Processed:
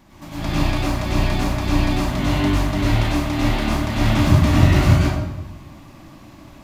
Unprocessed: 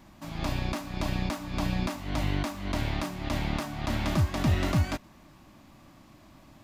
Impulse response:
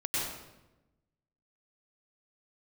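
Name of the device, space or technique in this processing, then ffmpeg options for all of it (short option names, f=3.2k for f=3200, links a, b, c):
bathroom: -filter_complex "[1:a]atrim=start_sample=2205[a];[0:a][a]afir=irnorm=-1:irlink=0,volume=3.5dB"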